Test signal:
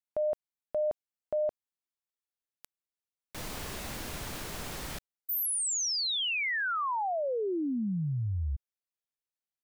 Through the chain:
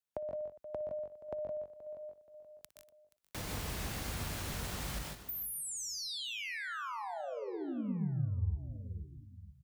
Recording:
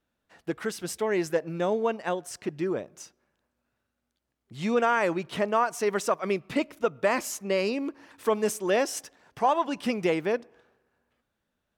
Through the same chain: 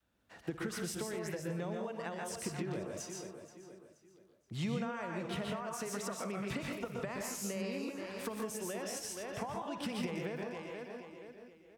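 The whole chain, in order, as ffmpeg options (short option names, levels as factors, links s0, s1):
-filter_complex "[0:a]lowshelf=f=100:g=7.5,asplit=2[s0][s1];[s1]aecho=0:1:477|954|1431:0.126|0.0428|0.0146[s2];[s0][s2]amix=inputs=2:normalize=0,acompressor=threshold=0.0158:ratio=6:attack=37:release=111:detection=peak,asplit=2[s3][s4];[s4]aecho=0:1:59|123|144|164|187|242:0.158|0.501|0.531|0.398|0.112|0.141[s5];[s3][s5]amix=inputs=2:normalize=0,adynamicequalizer=threshold=0.00447:dfrequency=330:dqfactor=1.2:tfrequency=330:tqfactor=1.2:attack=5:release=100:ratio=0.375:range=2.5:mode=cutabove:tftype=bell,highpass=51,acrossover=split=260[s6][s7];[s7]acompressor=threshold=0.0126:ratio=4:attack=7.9:release=425:knee=2.83:detection=peak[s8];[s6][s8]amix=inputs=2:normalize=0"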